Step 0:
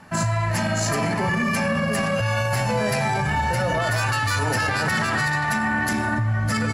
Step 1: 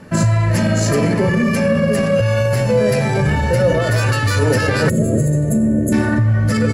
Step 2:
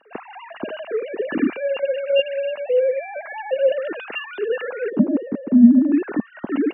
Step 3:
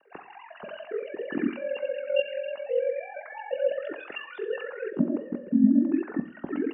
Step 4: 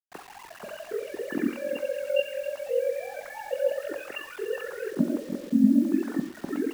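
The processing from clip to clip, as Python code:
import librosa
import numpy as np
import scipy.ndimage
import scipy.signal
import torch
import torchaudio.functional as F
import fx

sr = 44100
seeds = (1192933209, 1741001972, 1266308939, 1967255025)

y1 = fx.spec_box(x, sr, start_s=4.89, length_s=1.04, low_hz=690.0, high_hz=6300.0, gain_db=-26)
y1 = fx.low_shelf_res(y1, sr, hz=630.0, db=6.0, q=3.0)
y1 = fx.rider(y1, sr, range_db=10, speed_s=0.5)
y1 = y1 * librosa.db_to_amplitude(2.5)
y2 = fx.sine_speech(y1, sr)
y2 = fx.small_body(y2, sr, hz=(220.0, 2800.0), ring_ms=25, db=16)
y2 = y2 * librosa.db_to_amplitude(-13.0)
y3 = fx.spec_box(y2, sr, start_s=5.42, length_s=0.24, low_hz=580.0, high_hz=1400.0, gain_db=-10)
y3 = y3 * np.sin(2.0 * np.pi * 22.0 * np.arange(len(y3)) / sr)
y3 = fx.rev_double_slope(y3, sr, seeds[0], early_s=0.57, late_s=3.7, knee_db=-27, drr_db=9.0)
y3 = y3 * librosa.db_to_amplitude(-5.5)
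y4 = fx.quant_dither(y3, sr, seeds[1], bits=8, dither='none')
y4 = y4 + 10.0 ** (-14.5 / 20.0) * np.pad(y4, (int(295 * sr / 1000.0), 0))[:len(y4)]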